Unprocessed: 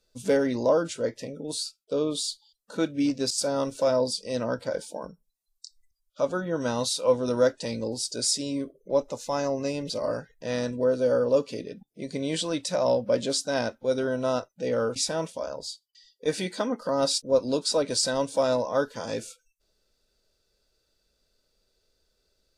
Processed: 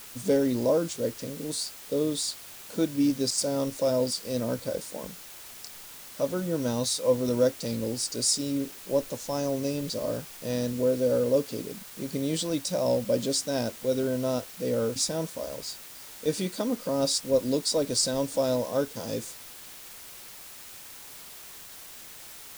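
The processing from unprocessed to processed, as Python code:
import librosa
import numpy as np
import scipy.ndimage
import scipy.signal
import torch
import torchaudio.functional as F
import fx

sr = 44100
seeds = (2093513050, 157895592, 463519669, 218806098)

y = fx.peak_eq(x, sr, hz=1500.0, db=-11.5, octaves=2.6)
y = fx.quant_dither(y, sr, seeds[0], bits=8, dither='triangular')
y = y * 10.0 ** (3.0 / 20.0)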